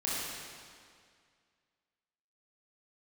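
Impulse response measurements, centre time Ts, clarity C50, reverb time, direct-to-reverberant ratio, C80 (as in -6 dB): 145 ms, -3.5 dB, 2.1 s, -8.0 dB, -1.5 dB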